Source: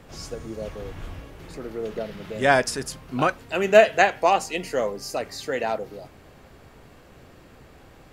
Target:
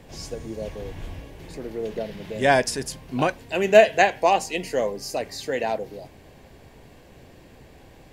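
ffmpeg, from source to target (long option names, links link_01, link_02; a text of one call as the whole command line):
ffmpeg -i in.wav -af "equalizer=frequency=1300:width=4.9:gain=-13,volume=1dB" out.wav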